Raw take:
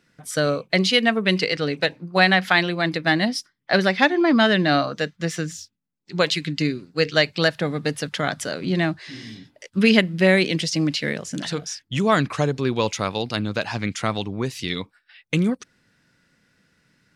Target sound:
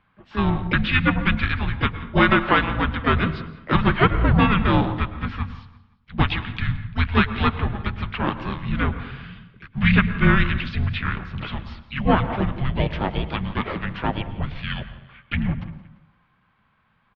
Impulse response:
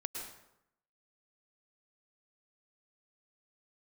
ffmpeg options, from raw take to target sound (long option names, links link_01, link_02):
-filter_complex "[0:a]bandreject=frequency=50:width_type=h:width=6,bandreject=frequency=100:width_type=h:width=6,bandreject=frequency=150:width_type=h:width=6,bandreject=frequency=200:width_type=h:width=6,bandreject=frequency=250:width_type=h:width=6,bandreject=frequency=300:width_type=h:width=6,bandreject=frequency=350:width_type=h:width=6,bandreject=frequency=400:width_type=h:width=6,bandreject=frequency=450:width_type=h:width=6,bandreject=frequency=500:width_type=h:width=6,asplit=4[link_01][link_02][link_03][link_04];[link_02]asetrate=35002,aresample=44100,atempo=1.25992,volume=-15dB[link_05];[link_03]asetrate=37084,aresample=44100,atempo=1.18921,volume=-9dB[link_06];[link_04]asetrate=58866,aresample=44100,atempo=0.749154,volume=-8dB[link_07];[link_01][link_05][link_06][link_07]amix=inputs=4:normalize=0,aecho=1:1:172|344|516:0.0891|0.0392|0.0173,asplit=2[link_08][link_09];[1:a]atrim=start_sample=2205,highshelf=frequency=2700:gain=-12[link_10];[link_09][link_10]afir=irnorm=-1:irlink=0,volume=-3dB[link_11];[link_08][link_11]amix=inputs=2:normalize=0,highpass=frequency=220:width_type=q:width=0.5412,highpass=frequency=220:width_type=q:width=1.307,lowpass=frequency=3600:width_type=q:width=0.5176,lowpass=frequency=3600:width_type=q:width=0.7071,lowpass=frequency=3600:width_type=q:width=1.932,afreqshift=-400,volume=-3dB"